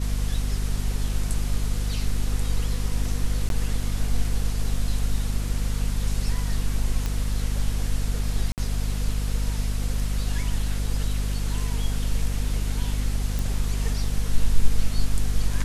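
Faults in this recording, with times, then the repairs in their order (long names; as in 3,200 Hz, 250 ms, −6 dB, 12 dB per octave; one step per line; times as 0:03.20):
mains hum 50 Hz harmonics 5 −26 dBFS
0:03.49–0:03.50: drop-out 12 ms
0:07.06: click −14 dBFS
0:08.52–0:08.58: drop-out 58 ms
0:13.39: click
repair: click removal
hum removal 50 Hz, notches 5
repair the gap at 0:03.49, 12 ms
repair the gap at 0:08.52, 58 ms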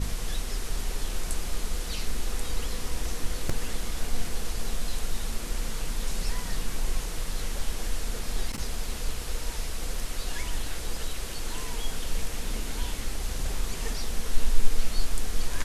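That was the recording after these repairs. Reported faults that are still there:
none of them is left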